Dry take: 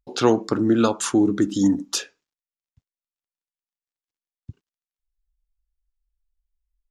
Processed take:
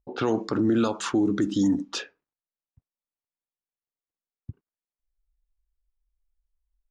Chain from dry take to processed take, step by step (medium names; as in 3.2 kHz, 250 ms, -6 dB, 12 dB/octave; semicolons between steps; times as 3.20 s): level-controlled noise filter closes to 1.1 kHz, open at -14 dBFS; peak limiter -15 dBFS, peak gain reduction 10 dB